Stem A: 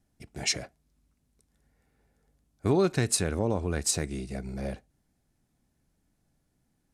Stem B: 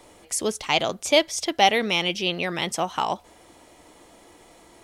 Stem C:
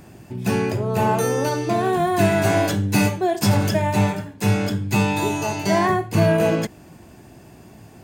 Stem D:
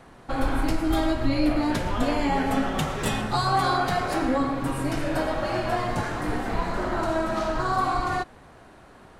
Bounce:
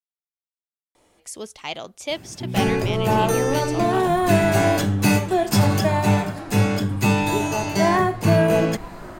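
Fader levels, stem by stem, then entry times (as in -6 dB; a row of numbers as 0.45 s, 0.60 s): mute, -9.0 dB, +0.5 dB, -10.5 dB; mute, 0.95 s, 2.10 s, 2.25 s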